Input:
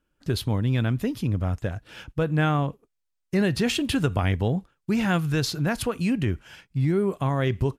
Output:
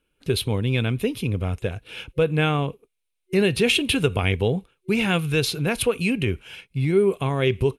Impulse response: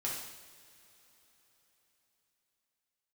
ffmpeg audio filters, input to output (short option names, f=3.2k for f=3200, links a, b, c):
-af "superequalizer=7b=2.24:12b=3.16:13b=2.24:16b=2.51"